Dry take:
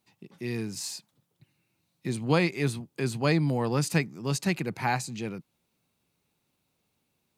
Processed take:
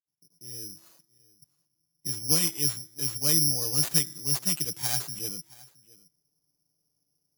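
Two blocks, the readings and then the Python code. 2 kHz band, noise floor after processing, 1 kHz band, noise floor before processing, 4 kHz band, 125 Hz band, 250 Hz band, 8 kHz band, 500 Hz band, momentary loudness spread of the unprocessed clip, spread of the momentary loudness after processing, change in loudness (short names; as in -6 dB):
-10.0 dB, -80 dBFS, -12.5 dB, -77 dBFS, +8.5 dB, -7.0 dB, -9.0 dB, +12.0 dB, -11.5 dB, 12 LU, 17 LU, +4.5 dB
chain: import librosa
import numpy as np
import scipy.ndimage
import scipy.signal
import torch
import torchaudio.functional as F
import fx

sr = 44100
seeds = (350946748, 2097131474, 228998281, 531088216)

p1 = fx.fade_in_head(x, sr, length_s=0.98)
p2 = fx.env_lowpass(p1, sr, base_hz=870.0, full_db=-21.5)
p3 = fx.peak_eq(p2, sr, hz=970.0, db=-5.5, octaves=2.2)
p4 = p3 + 0.65 * np.pad(p3, (int(6.6 * sr / 1000.0), 0))[:len(p3)]
p5 = fx.rider(p4, sr, range_db=10, speed_s=2.0)
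p6 = p4 + (p5 * 10.0 ** (1.0 / 20.0))
p7 = fx.comb_fb(p6, sr, f0_hz=330.0, decay_s=1.0, harmonics='all', damping=0.0, mix_pct=50)
p8 = p7 + fx.echo_single(p7, sr, ms=670, db=-22.5, dry=0)
p9 = (np.kron(p8[::8], np.eye(8)[0]) * 8)[:len(p8)]
y = p9 * 10.0 ** (-11.0 / 20.0)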